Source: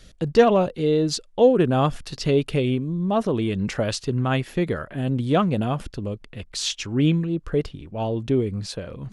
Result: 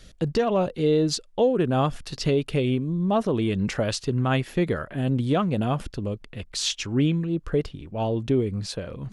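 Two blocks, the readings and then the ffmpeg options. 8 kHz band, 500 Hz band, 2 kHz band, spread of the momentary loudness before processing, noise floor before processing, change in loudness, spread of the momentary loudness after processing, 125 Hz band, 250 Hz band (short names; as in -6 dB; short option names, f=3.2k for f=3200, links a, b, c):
-0.5 dB, -3.0 dB, -2.0 dB, 12 LU, -50 dBFS, -2.5 dB, 8 LU, -1.0 dB, -1.5 dB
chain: -af "alimiter=limit=-13dB:level=0:latency=1:release=332"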